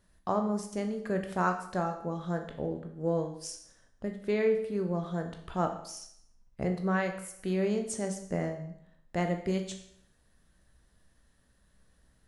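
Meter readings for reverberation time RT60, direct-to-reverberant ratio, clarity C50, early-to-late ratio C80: 0.70 s, 4.5 dB, 8.5 dB, 11.5 dB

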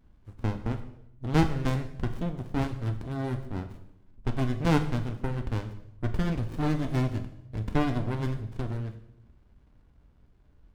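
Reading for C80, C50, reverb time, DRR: 13.0 dB, 11.0 dB, 0.75 s, 6.0 dB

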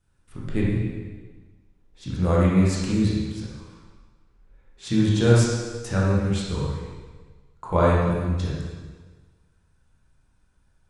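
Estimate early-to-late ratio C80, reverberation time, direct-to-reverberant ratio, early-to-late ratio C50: 1.5 dB, 1.4 s, -6.0 dB, -1.5 dB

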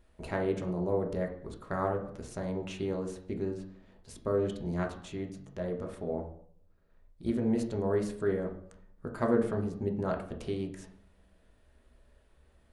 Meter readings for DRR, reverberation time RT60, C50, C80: 1.5 dB, 0.60 s, 8.0 dB, 12.5 dB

